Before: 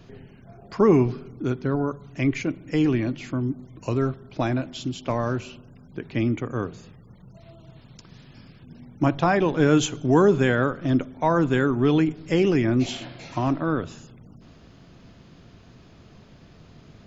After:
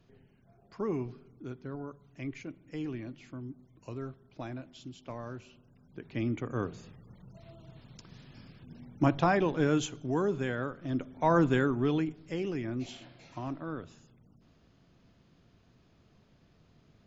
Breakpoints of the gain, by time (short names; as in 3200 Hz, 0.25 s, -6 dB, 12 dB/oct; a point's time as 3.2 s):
5.45 s -16 dB
6.68 s -4.5 dB
9.19 s -4.5 dB
10.12 s -12.5 dB
10.87 s -12.5 dB
11.36 s -3 dB
12.36 s -14 dB